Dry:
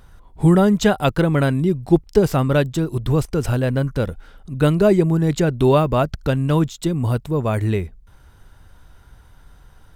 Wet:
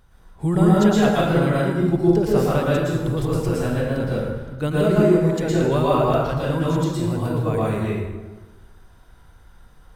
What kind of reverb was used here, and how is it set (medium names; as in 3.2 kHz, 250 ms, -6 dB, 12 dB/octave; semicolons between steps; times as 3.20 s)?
plate-style reverb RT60 1.3 s, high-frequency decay 0.65×, pre-delay 100 ms, DRR -7 dB; trim -8.5 dB